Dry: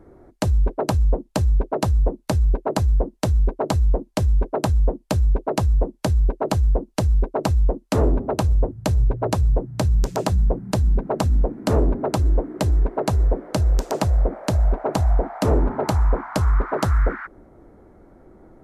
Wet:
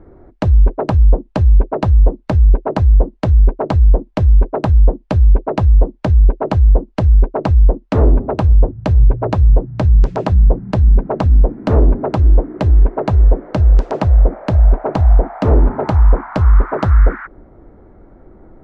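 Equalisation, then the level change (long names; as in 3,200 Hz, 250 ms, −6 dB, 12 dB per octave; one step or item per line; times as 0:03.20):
low-pass filter 2,700 Hz 12 dB per octave
low-shelf EQ 76 Hz +7.5 dB
+4.0 dB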